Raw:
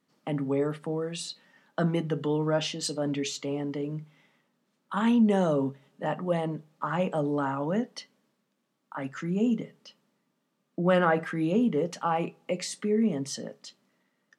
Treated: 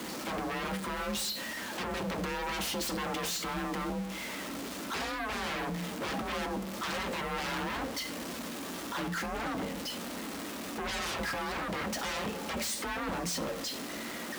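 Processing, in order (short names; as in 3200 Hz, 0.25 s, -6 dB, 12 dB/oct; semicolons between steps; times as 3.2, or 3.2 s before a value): zero-crossing step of -34.5 dBFS; in parallel at -1.5 dB: limiter -21.5 dBFS, peak gain reduction 10.5 dB; on the sum: wavefolder -26.5 dBFS; flange 1.2 Hz, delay 6.2 ms, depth 2.1 ms, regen -69%; frequency shift +40 Hz; on a send at -12 dB: reverb RT60 0.65 s, pre-delay 4 ms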